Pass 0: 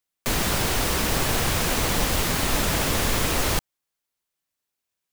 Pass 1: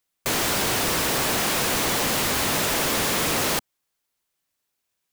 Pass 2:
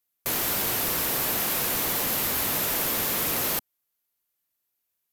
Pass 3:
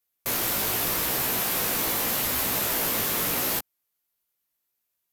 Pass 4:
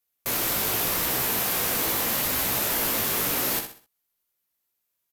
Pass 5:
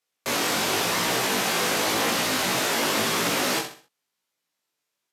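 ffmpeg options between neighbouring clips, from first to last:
-af "afftfilt=real='re*lt(hypot(re,im),0.282)':imag='im*lt(hypot(re,im),0.282)':win_size=1024:overlap=0.75,aeval=exprs='0.266*sin(PI/2*2.82*val(0)/0.266)':c=same,volume=-8dB"
-af "equalizer=f=13k:w=1.8:g=14.5,volume=-6.5dB"
-af "flanger=delay=15.5:depth=2.9:speed=0.83,volume=3.5dB"
-af "aecho=1:1:64|128|192|256:0.398|0.139|0.0488|0.0171"
-af "flanger=delay=17:depth=5.5:speed=0.94,highpass=160,lowpass=7k,volume=8.5dB"

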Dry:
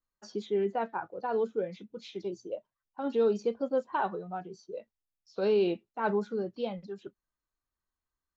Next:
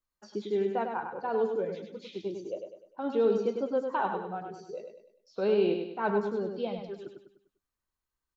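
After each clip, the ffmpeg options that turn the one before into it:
-filter_complex "[0:a]aecho=1:1:100|200|300|400|500:0.501|0.21|0.0884|0.0371|0.0156,acrossover=split=4100[a][b];[b]acompressor=threshold=-59dB:ratio=4:attack=1:release=60[c];[a][c]amix=inputs=2:normalize=0"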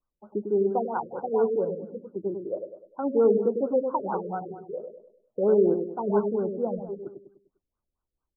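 -af "afftfilt=real='re*lt(b*sr/1024,580*pow(1600/580,0.5+0.5*sin(2*PI*4.4*pts/sr)))':imag='im*lt(b*sr/1024,580*pow(1600/580,0.5+0.5*sin(2*PI*4.4*pts/sr)))':win_size=1024:overlap=0.75,volume=5dB"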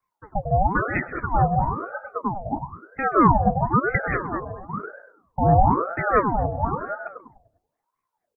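-af "aecho=1:1:129|258|387:0.119|0.0475|0.019,aeval=exprs='val(0)*sin(2*PI*670*n/s+670*0.6/1*sin(2*PI*1*n/s))':c=same,volume=7dB"

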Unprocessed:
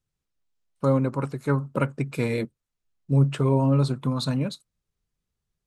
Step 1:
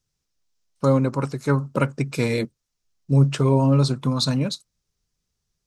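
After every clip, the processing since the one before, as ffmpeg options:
-af "equalizer=f=5.6k:t=o:w=0.87:g=10.5,volume=3dB"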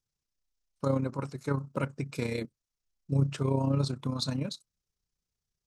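-af "tremolo=f=31:d=0.571,volume=-7.5dB"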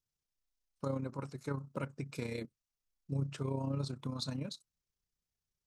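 -af "acompressor=threshold=-34dB:ratio=1.5,volume=-4.5dB"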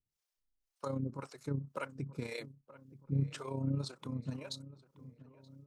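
-filter_complex "[0:a]acrossover=split=440[a][b];[a]aeval=exprs='val(0)*(1-1/2+1/2*cos(2*PI*1.9*n/s))':c=same[c];[b]aeval=exprs='val(0)*(1-1/2-1/2*cos(2*PI*1.9*n/s))':c=same[d];[c][d]amix=inputs=2:normalize=0,asplit=2[e][f];[f]adelay=927,lowpass=f=1.5k:p=1,volume=-17dB,asplit=2[g][h];[h]adelay=927,lowpass=f=1.5k:p=1,volume=0.55,asplit=2[i][j];[j]adelay=927,lowpass=f=1.5k:p=1,volume=0.55,asplit=2[k][l];[l]adelay=927,lowpass=f=1.5k:p=1,volume=0.55,asplit=2[m][n];[n]adelay=927,lowpass=f=1.5k:p=1,volume=0.55[o];[e][g][i][k][m][o]amix=inputs=6:normalize=0,volume=4dB"

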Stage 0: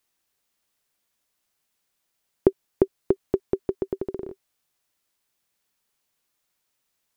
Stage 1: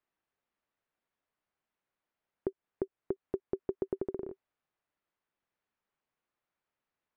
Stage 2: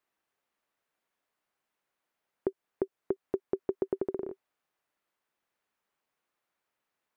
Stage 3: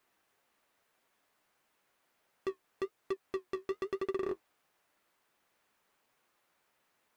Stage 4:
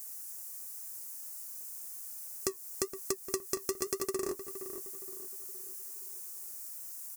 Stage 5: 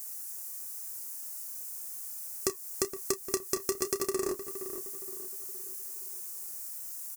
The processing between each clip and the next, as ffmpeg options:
-af "lowpass=1.9k,lowshelf=f=170:g=-3.5,alimiter=limit=-15.5dB:level=0:latency=1:release=209,volume=-4.5dB"
-af "lowshelf=f=170:g=-10,volume=5dB"
-filter_complex "[0:a]asplit=2[a][b];[b]alimiter=level_in=4.5dB:limit=-24dB:level=0:latency=1,volume=-4.5dB,volume=-2dB[c];[a][c]amix=inputs=2:normalize=0,volume=34.5dB,asoftclip=hard,volume=-34.5dB,flanger=delay=7.2:depth=7.4:regen=-49:speed=0.97:shape=triangular,volume=8dB"
-filter_complex "[0:a]acompressor=threshold=-41dB:ratio=4,aexciter=amount=15.3:drive=8.8:freq=5.4k,asplit=2[a][b];[b]adelay=467,lowpass=f=1.9k:p=1,volume=-10dB,asplit=2[c][d];[d]adelay=467,lowpass=f=1.9k:p=1,volume=0.45,asplit=2[e][f];[f]adelay=467,lowpass=f=1.9k:p=1,volume=0.45,asplit=2[g][h];[h]adelay=467,lowpass=f=1.9k:p=1,volume=0.45,asplit=2[i][j];[j]adelay=467,lowpass=f=1.9k:p=1,volume=0.45[k];[c][e][g][i][k]amix=inputs=5:normalize=0[l];[a][l]amix=inputs=2:normalize=0,volume=7dB"
-filter_complex "[0:a]asplit=2[a][b];[b]adelay=30,volume=-12dB[c];[a][c]amix=inputs=2:normalize=0,volume=3dB"

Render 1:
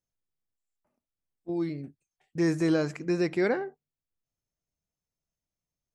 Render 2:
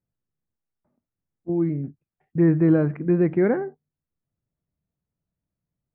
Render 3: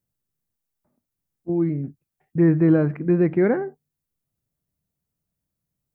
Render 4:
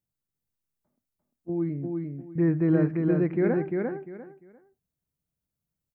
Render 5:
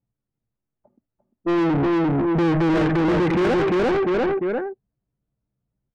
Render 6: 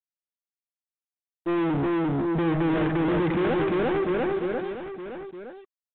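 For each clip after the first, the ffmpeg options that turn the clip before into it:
-af "lowpass=f=2k:w=0.5412,lowpass=f=2k:w=1.3066,equalizer=f=140:w=0.42:g=11.5"
-af "crystalizer=i=1.5:c=0,volume=1dB"
-af "aecho=1:1:348|696|1044:0.668|0.154|0.0354,volume=-6.5dB"
-filter_complex "[0:a]acompressor=threshold=-41dB:ratio=1.5,asplit=2[a][b];[b]highpass=f=720:p=1,volume=40dB,asoftclip=type=tanh:threshold=-20.5dB[c];[a][c]amix=inputs=2:normalize=0,lowpass=f=2.1k:p=1,volume=-6dB,anlmdn=1.58,volume=7.5dB"
-af "acrusher=bits=5:mix=0:aa=0.5,aecho=1:1:916:0.282,volume=-5dB" -ar 8000 -c:a pcm_mulaw

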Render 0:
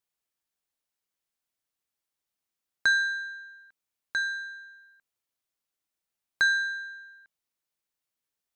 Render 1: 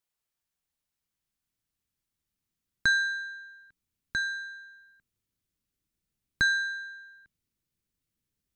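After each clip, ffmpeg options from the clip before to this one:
-af "asubboost=boost=10:cutoff=230"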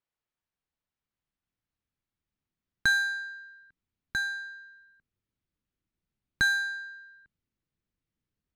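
-af "adynamicsmooth=sensitivity=7:basefreq=3.5k"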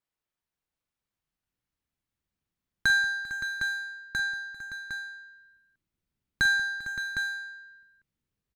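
-af "aecho=1:1:44|186|396|454|568|758:0.251|0.15|0.106|0.2|0.282|0.422"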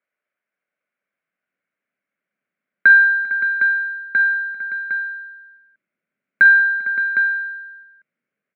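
-af "highpass=f=200:w=0.5412,highpass=f=200:w=1.3066,equalizer=f=320:t=q:w=4:g=-5,equalizer=f=590:t=q:w=4:g=9,equalizer=f=890:t=q:w=4:g=-9,equalizer=f=1.5k:t=q:w=4:g=9,equalizer=f=2.2k:t=q:w=4:g=9,lowpass=f=2.5k:w=0.5412,lowpass=f=2.5k:w=1.3066,volume=5.5dB"

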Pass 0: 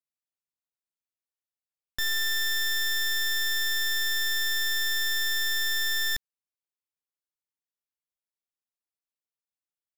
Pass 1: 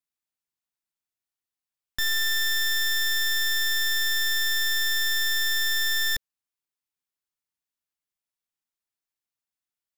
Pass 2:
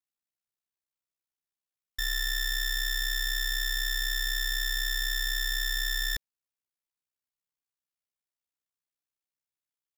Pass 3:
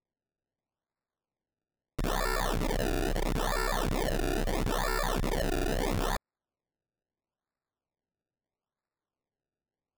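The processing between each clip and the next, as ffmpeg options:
-af "equalizer=f=520:w=3.7:g=-9,volume=2.5dB"
-af "aeval=exprs='val(0)*sin(2*PI*32*n/s)':c=same,volume=-2.5dB"
-af "acrusher=samples=28:mix=1:aa=0.000001:lfo=1:lforange=28:lforate=0.76"

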